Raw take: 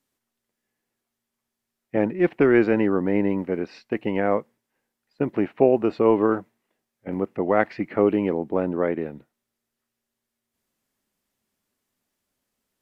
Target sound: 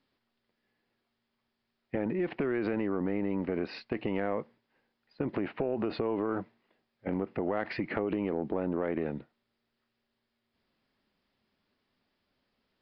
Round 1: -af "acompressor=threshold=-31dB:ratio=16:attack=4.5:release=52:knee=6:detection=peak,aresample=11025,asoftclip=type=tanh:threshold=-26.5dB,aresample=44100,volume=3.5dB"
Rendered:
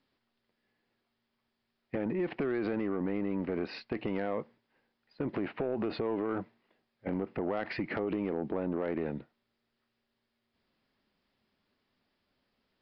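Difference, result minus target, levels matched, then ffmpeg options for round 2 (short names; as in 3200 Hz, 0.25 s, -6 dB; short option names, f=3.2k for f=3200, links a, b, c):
soft clip: distortion +20 dB
-af "acompressor=threshold=-31dB:ratio=16:attack=4.5:release=52:knee=6:detection=peak,aresample=11025,asoftclip=type=tanh:threshold=-14.5dB,aresample=44100,volume=3.5dB"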